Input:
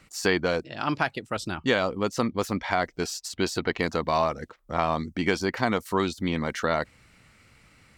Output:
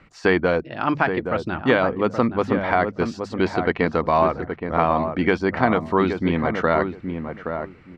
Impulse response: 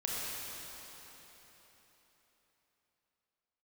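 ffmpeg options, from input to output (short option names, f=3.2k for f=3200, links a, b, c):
-filter_complex "[0:a]lowpass=2.2k,bandreject=f=50:t=h:w=6,bandreject=f=100:t=h:w=6,bandreject=f=150:t=h:w=6,bandreject=f=200:t=h:w=6,asplit=2[a][b];[b]adelay=822,lowpass=f=1.2k:p=1,volume=-6.5dB,asplit=2[c][d];[d]adelay=822,lowpass=f=1.2k:p=1,volume=0.19,asplit=2[e][f];[f]adelay=822,lowpass=f=1.2k:p=1,volume=0.19[g];[c][e][g]amix=inputs=3:normalize=0[h];[a][h]amix=inputs=2:normalize=0,volume=6dB"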